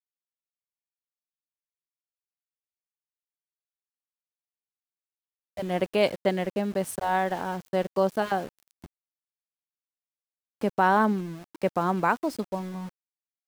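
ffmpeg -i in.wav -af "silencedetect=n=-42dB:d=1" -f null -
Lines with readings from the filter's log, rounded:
silence_start: 0.00
silence_end: 5.57 | silence_duration: 5.57
silence_start: 8.86
silence_end: 10.61 | silence_duration: 1.75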